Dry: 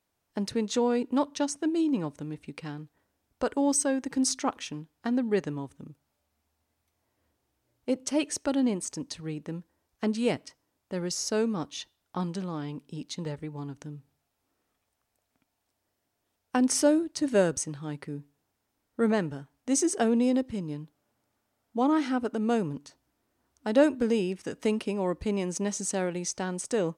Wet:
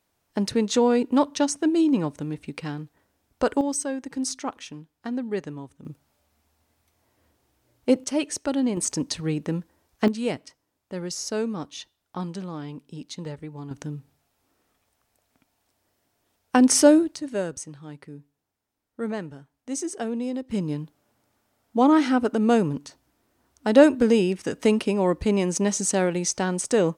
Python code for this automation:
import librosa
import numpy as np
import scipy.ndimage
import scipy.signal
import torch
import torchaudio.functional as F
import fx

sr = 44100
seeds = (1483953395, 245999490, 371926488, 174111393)

y = fx.gain(x, sr, db=fx.steps((0.0, 6.0), (3.61, -2.0), (5.85, 8.5), (8.04, 2.0), (8.77, 9.0), (10.08, 0.0), (13.71, 7.5), (17.16, -4.5), (20.51, 7.0)))